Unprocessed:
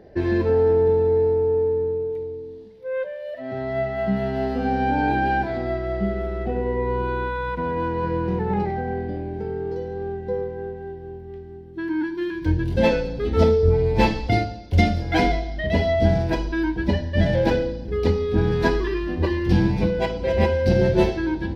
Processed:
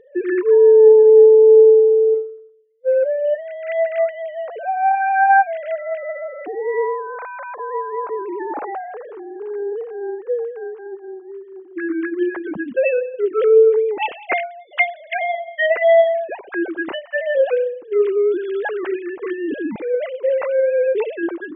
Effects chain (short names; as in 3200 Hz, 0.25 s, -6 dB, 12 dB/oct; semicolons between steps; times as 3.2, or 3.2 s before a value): sine-wave speech; 2.14–3.03 upward expander 2.5:1, over -34 dBFS; gain +4.5 dB